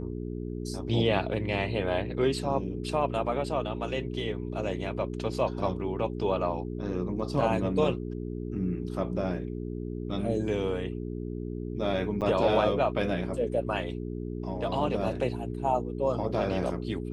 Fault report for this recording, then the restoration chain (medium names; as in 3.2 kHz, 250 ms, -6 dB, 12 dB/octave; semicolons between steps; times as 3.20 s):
hum 60 Hz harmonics 7 -35 dBFS
12.21–12.22 s: dropout 7.9 ms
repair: de-hum 60 Hz, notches 7; interpolate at 12.21 s, 7.9 ms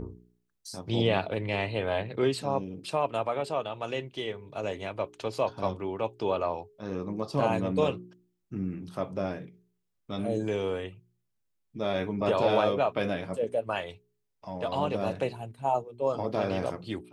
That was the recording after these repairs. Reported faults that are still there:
nothing left